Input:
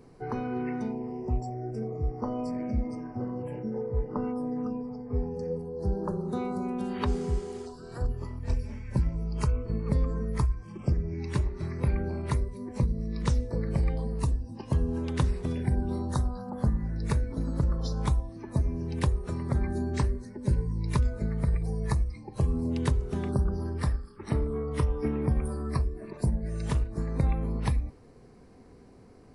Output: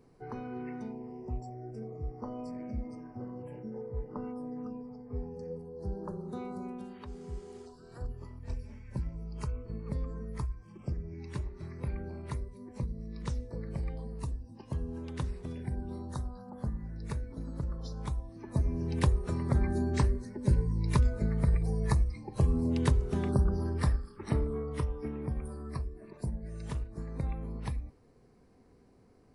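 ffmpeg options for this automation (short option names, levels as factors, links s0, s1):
-af "volume=3.16,afade=t=out:st=6.67:d=0.37:silence=0.316228,afade=t=in:st=7.04:d=0.52:silence=0.354813,afade=t=in:st=18.12:d=0.76:silence=0.354813,afade=t=out:st=24.09:d=0.93:silence=0.375837"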